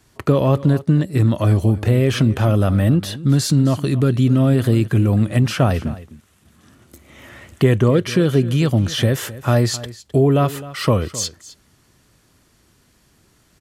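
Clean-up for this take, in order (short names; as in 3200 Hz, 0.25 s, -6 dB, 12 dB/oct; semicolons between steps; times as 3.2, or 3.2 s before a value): inverse comb 0.26 s -17 dB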